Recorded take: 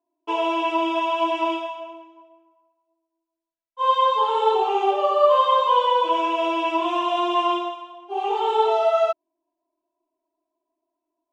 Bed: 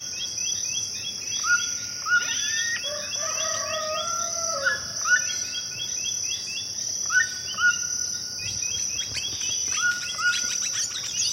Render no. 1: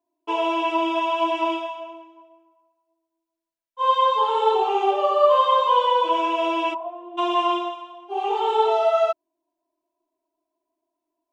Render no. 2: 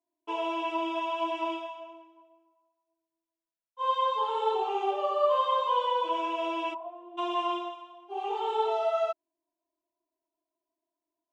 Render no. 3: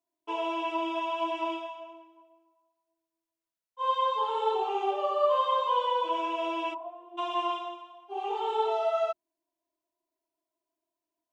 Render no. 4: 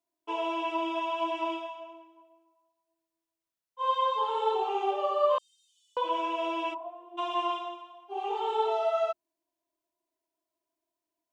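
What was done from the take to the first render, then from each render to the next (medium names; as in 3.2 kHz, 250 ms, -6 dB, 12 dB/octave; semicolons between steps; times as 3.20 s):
6.73–7.17 s: band-pass filter 900 Hz -> 350 Hz, Q 6.1
trim -8.5 dB
hum notches 50/100/150/200/250/300/350 Hz
5.38–5.97 s: inverse Chebyshev high-pass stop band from 1.2 kHz, stop band 80 dB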